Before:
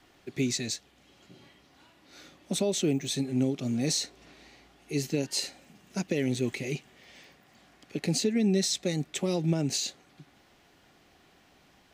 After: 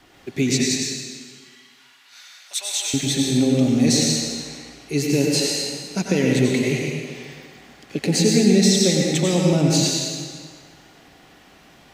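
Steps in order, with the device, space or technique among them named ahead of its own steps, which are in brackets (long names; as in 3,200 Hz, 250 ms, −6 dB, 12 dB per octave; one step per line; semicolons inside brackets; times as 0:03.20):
0:00.61–0:02.94: Bessel high-pass filter 1,500 Hz, order 4
stairwell (convolution reverb RT60 1.8 s, pre-delay 85 ms, DRR −1.5 dB)
level +7.5 dB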